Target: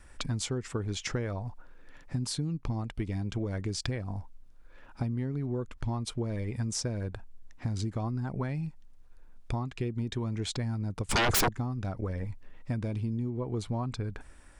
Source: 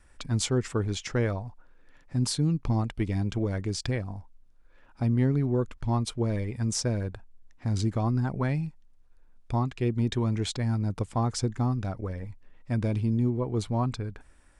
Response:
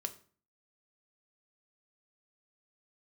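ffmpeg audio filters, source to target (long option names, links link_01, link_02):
-filter_complex "[0:a]acompressor=threshold=-34dB:ratio=10,asettb=1/sr,asplit=3[link_01][link_02][link_03];[link_01]atrim=end=11.094[link_04];[link_02]atrim=start=11.09:end=11.49,asetpts=PTS-STARTPTS,afade=type=in:duration=0.004:curve=qsin,afade=type=out:start_time=0.396:duration=0.004:curve=qsin,aeval=exprs='0.0473*sin(PI/2*7.08*val(0)/0.0473)':channel_layout=same[link_05];[link_03]atrim=start=11.486[link_06];[link_04][link_05]acrossfade=duration=0.004:curve1=hsin:curve2=qsin[link_07];[link_07][link_06]acrossfade=duration=0.004:curve1=qsin:curve2=hsin,volume=5dB"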